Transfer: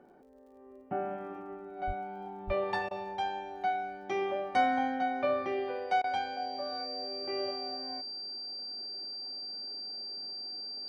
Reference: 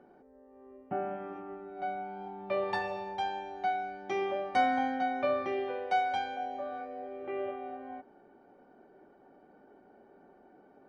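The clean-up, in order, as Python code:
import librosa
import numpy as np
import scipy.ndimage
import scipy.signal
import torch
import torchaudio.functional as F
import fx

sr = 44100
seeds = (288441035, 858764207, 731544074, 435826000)

y = fx.fix_declick_ar(x, sr, threshold=6.5)
y = fx.notch(y, sr, hz=4700.0, q=30.0)
y = fx.fix_deplosive(y, sr, at_s=(1.86, 2.46))
y = fx.fix_interpolate(y, sr, at_s=(2.89, 6.02), length_ms=19.0)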